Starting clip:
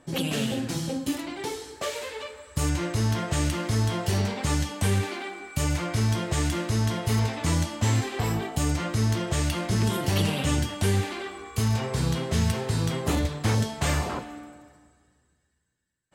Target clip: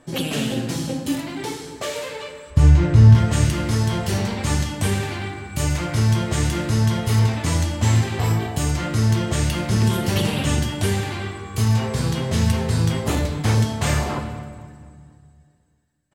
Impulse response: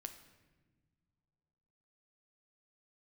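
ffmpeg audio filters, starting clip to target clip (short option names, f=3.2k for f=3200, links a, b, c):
-filter_complex "[0:a]asettb=1/sr,asplit=3[a][b][c];[a]atrim=end=2.504[d];[b]atrim=start=2.5:end=3.15,asetpts=PTS-STARTPTS,afade=t=in:d=0.004:c=qsin,afade=t=out:st=0.646:d=0.004:c=qsin,aemphasis=mode=reproduction:type=bsi[e];[c]atrim=start=3.146[f];[d][e]acrossfade=d=0.004:c1=hsin:c2=qsin[g];[g][f]acrossfade=d=0.004:c1=qsin:c2=hsin,asplit=2[h][i];[i]adelay=241,lowpass=f=2.5k:p=1,volume=-17.5dB,asplit=2[j][k];[k]adelay=241,lowpass=f=2.5k:p=1,volume=0.52,asplit=2[l][m];[m]adelay=241,lowpass=f=2.5k:p=1,volume=0.52,asplit=2[n][o];[o]adelay=241,lowpass=f=2.5k:p=1,volume=0.52[p];[h][j][l][n][p]amix=inputs=5:normalize=0[q];[1:a]atrim=start_sample=2205[r];[q][r]afir=irnorm=-1:irlink=0,volume=8dB"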